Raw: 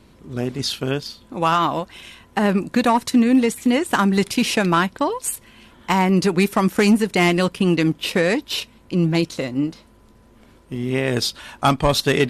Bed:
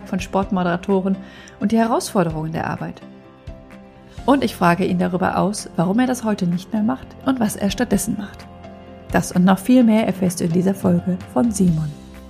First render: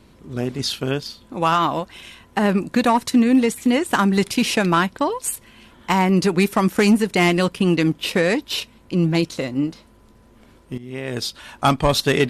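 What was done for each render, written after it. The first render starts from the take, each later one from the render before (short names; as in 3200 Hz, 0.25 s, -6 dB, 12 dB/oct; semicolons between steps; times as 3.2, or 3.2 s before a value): 10.78–11.64 fade in linear, from -15 dB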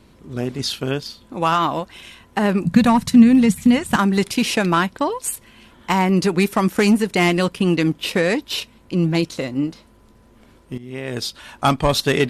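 2.65–3.96 resonant low shelf 240 Hz +10.5 dB, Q 3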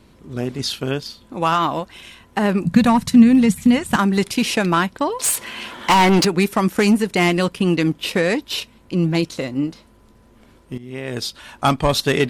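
5.19–6.25 overdrive pedal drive 24 dB, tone 5800 Hz, clips at -6.5 dBFS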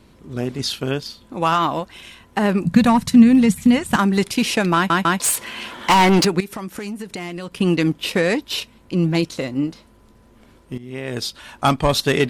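4.75 stutter in place 0.15 s, 3 plays; 6.4–7.58 compressor, threshold -27 dBFS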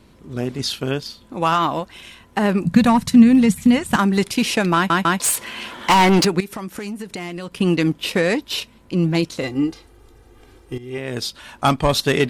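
9.43–10.98 comb 2.5 ms, depth 96%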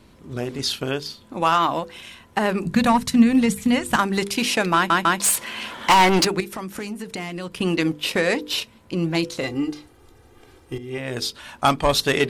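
notches 50/100/150/200/250/300/350/400/450/500 Hz; dynamic EQ 160 Hz, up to -6 dB, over -30 dBFS, Q 0.77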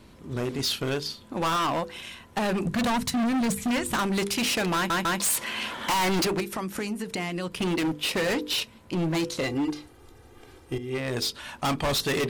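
overloaded stage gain 23 dB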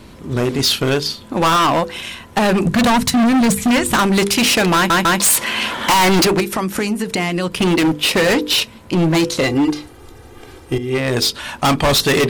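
gain +11.5 dB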